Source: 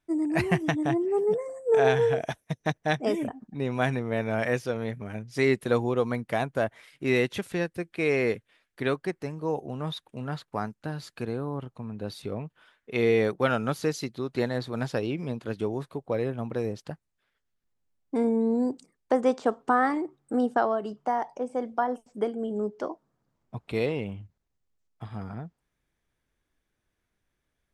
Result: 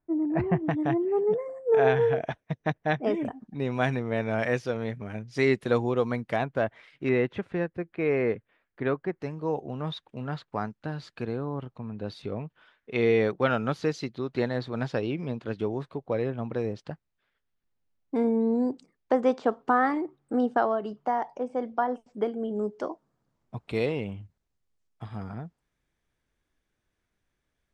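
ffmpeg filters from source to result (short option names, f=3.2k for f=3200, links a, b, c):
-af "asetnsamples=n=441:p=0,asendcmd='0.71 lowpass f 2700;3.25 lowpass f 6300;6.36 lowpass f 3700;7.09 lowpass f 1800;9.2 lowpass f 4500;22.59 lowpass f 9400',lowpass=1.1k"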